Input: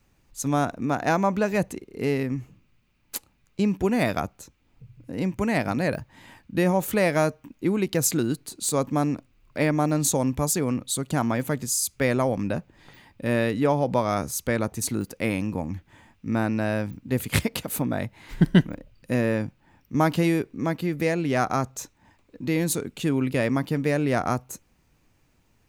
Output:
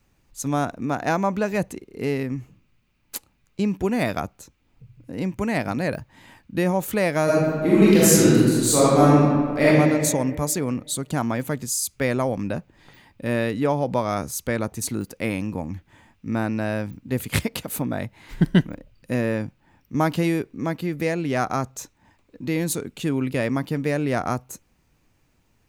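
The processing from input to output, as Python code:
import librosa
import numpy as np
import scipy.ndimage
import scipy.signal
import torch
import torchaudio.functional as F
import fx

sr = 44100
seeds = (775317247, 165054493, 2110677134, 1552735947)

y = fx.reverb_throw(x, sr, start_s=7.24, length_s=2.42, rt60_s=1.9, drr_db=-9.5)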